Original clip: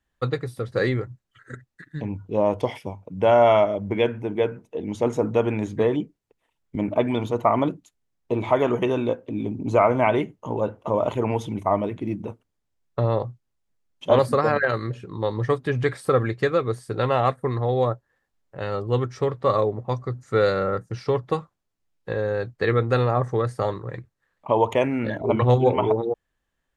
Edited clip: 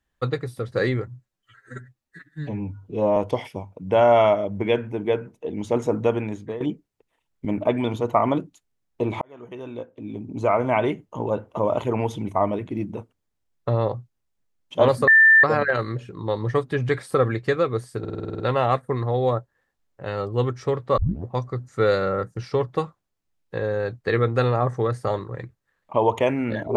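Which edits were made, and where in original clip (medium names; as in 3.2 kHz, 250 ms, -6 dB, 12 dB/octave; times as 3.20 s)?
1.08–2.47 s: stretch 1.5×
5.37–5.91 s: fade out linear, to -14.5 dB
8.52–10.31 s: fade in
14.38 s: add tone 1.78 kHz -9.5 dBFS 0.36 s
16.94 s: stutter 0.05 s, 9 plays
19.52 s: tape start 0.29 s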